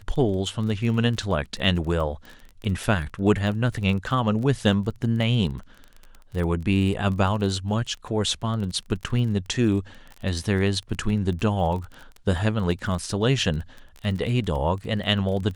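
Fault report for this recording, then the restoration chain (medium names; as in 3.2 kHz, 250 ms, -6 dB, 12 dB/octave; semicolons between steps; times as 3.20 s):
crackle 24 per s -31 dBFS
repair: de-click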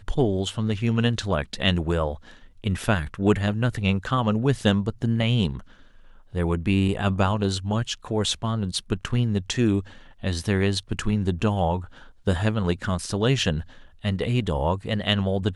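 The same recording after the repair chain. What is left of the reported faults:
nothing left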